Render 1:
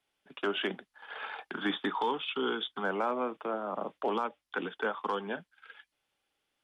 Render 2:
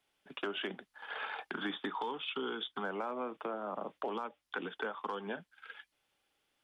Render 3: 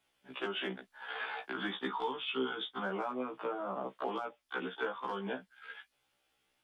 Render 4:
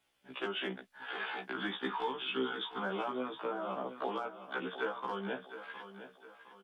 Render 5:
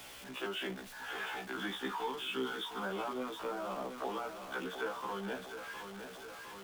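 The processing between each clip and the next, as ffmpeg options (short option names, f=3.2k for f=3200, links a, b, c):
-af "acompressor=threshold=-38dB:ratio=4,volume=2dB"
-af "afftfilt=real='re*1.73*eq(mod(b,3),0)':imag='im*1.73*eq(mod(b,3),0)':win_size=2048:overlap=0.75,volume=4dB"
-af "aecho=1:1:711|1422|2133|2844:0.251|0.098|0.0382|0.0149"
-af "aeval=exprs='val(0)+0.5*0.00891*sgn(val(0))':c=same,volume=-3.5dB"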